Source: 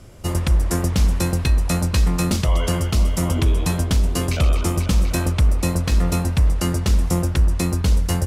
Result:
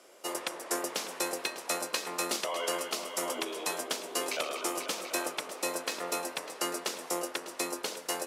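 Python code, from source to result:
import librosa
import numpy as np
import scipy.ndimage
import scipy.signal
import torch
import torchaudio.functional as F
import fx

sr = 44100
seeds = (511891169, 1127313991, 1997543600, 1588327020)

p1 = scipy.signal.sosfilt(scipy.signal.butter(4, 390.0, 'highpass', fs=sr, output='sos'), x)
p2 = p1 + fx.echo_single(p1, sr, ms=600, db=-14.5, dry=0)
y = p2 * librosa.db_to_amplitude(-5.0)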